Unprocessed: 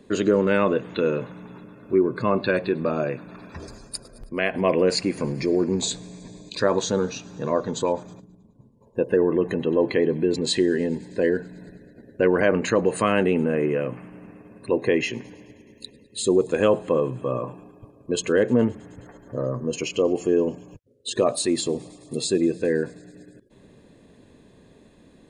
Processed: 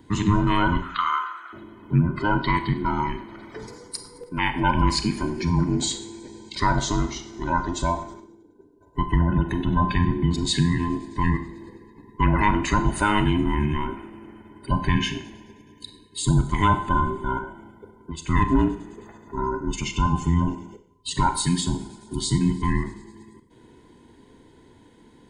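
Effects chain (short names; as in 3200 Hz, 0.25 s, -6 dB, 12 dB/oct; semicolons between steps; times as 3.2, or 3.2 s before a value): band inversion scrambler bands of 500 Hz; 0.82–1.53 resonant high-pass 1300 Hz, resonance Q 11; 17.38–18.29 compressor 3:1, threshold -34 dBFS, peak gain reduction 11 dB; Schroeder reverb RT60 0.59 s, combs from 30 ms, DRR 9 dB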